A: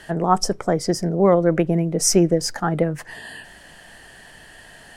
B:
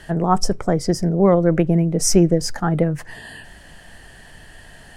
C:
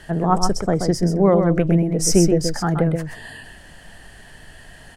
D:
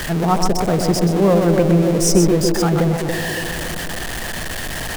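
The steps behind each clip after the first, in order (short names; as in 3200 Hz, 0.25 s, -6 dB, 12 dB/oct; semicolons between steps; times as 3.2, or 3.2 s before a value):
low shelf 150 Hz +11.5 dB; gain -1 dB
echo 0.129 s -6 dB; gain -1 dB
zero-crossing step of -19.5 dBFS; band-limited delay 0.282 s, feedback 58%, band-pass 430 Hz, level -4.5 dB; gain -1 dB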